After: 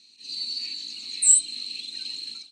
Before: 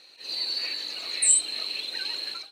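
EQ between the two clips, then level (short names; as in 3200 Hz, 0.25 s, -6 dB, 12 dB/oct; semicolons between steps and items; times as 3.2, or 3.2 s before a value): EQ curve 110 Hz 0 dB, 230 Hz +7 dB, 570 Hz -22 dB, 940 Hz -16 dB, 1700 Hz -18 dB, 2400 Hz -5 dB, 7900 Hz +7 dB, 12000 Hz -14 dB; -2.5 dB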